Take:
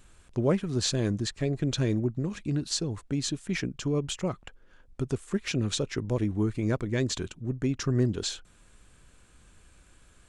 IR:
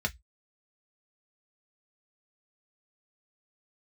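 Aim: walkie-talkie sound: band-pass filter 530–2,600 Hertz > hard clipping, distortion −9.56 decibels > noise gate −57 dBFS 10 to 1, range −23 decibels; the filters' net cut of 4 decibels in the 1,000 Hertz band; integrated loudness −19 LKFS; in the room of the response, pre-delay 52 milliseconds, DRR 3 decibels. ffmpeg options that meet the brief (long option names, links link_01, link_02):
-filter_complex "[0:a]equalizer=frequency=1000:width_type=o:gain=-4.5,asplit=2[link_01][link_02];[1:a]atrim=start_sample=2205,adelay=52[link_03];[link_02][link_03]afir=irnorm=-1:irlink=0,volume=-9.5dB[link_04];[link_01][link_04]amix=inputs=2:normalize=0,highpass=530,lowpass=2600,asoftclip=type=hard:threshold=-33.5dB,agate=range=-23dB:threshold=-57dB:ratio=10,volume=21dB"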